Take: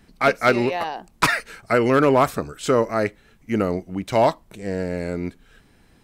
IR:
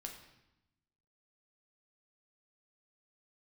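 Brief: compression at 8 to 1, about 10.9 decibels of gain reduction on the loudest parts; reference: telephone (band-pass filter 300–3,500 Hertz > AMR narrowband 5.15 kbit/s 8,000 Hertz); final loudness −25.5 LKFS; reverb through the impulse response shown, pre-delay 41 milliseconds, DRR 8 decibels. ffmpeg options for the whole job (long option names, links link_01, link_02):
-filter_complex "[0:a]acompressor=threshold=-23dB:ratio=8,asplit=2[link_01][link_02];[1:a]atrim=start_sample=2205,adelay=41[link_03];[link_02][link_03]afir=irnorm=-1:irlink=0,volume=-4.5dB[link_04];[link_01][link_04]amix=inputs=2:normalize=0,highpass=300,lowpass=3500,volume=6.5dB" -ar 8000 -c:a libopencore_amrnb -b:a 5150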